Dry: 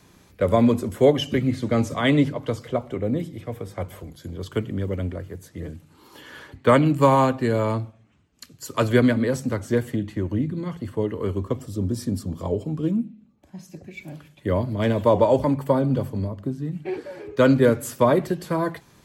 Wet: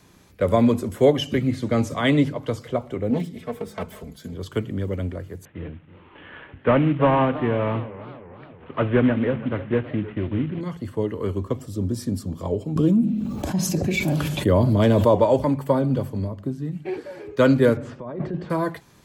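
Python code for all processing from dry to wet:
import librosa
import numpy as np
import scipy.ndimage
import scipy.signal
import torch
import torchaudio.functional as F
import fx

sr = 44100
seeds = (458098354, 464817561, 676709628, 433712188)

y = fx.chain(x, sr, fx.self_delay(depth_ms=0.29),
    fx.comb(ms=4.6, depth=0.87), at=(3.1, 4.34))
y = fx.chain(y, sr, fx.cvsd(bps=16000),
    fx.echo_warbled(ms=317, feedback_pct=54, rate_hz=2.8, cents=202, wet_db=-16.0), at=(5.45, 10.61))
y = fx.chain(y, sr, fx.peak_eq(hz=2000.0, db=-6.0, octaves=0.84),
    fx.env_flatten(amount_pct=70), at=(12.76, 15.15))
y = fx.chain(y, sr, fx.highpass(hz=50.0, slope=12),
    fx.over_compress(threshold_db=-27.0, ratio=-1.0),
    fx.spacing_loss(db_at_10k=40), at=(17.77, 18.5))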